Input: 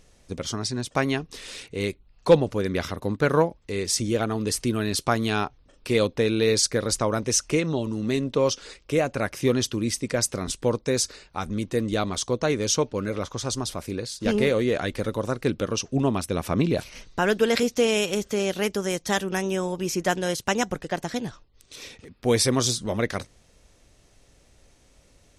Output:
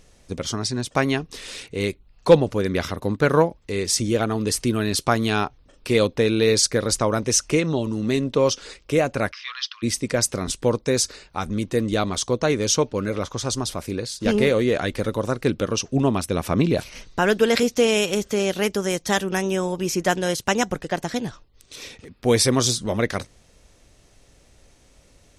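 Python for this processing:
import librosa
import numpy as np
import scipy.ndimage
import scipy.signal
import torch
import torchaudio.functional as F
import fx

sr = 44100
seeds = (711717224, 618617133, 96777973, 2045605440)

y = fx.cheby1_bandpass(x, sr, low_hz=1100.0, high_hz=5200.0, order=4, at=(9.31, 9.82), fade=0.02)
y = y * librosa.db_to_amplitude(3.0)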